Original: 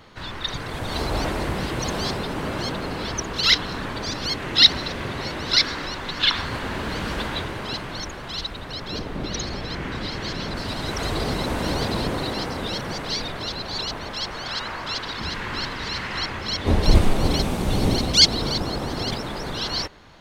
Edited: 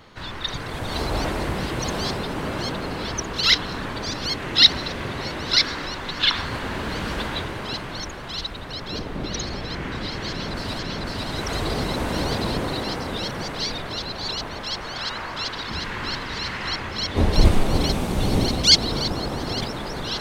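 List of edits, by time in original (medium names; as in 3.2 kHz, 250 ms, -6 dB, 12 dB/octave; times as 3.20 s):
10.29–10.79 s: loop, 2 plays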